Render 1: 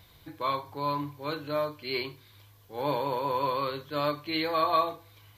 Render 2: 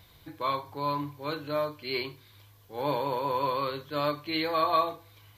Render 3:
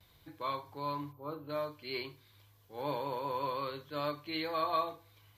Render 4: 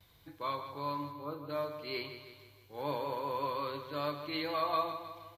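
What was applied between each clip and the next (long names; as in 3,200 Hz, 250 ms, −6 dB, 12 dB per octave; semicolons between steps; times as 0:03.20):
no processing that can be heard
harmonic generator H 2 −37 dB, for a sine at −13.5 dBFS; noise gate with hold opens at −49 dBFS; gain on a spectral selection 0:01.12–0:01.49, 1,400–12,000 Hz −16 dB; level −7 dB
repeating echo 157 ms, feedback 52%, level −10 dB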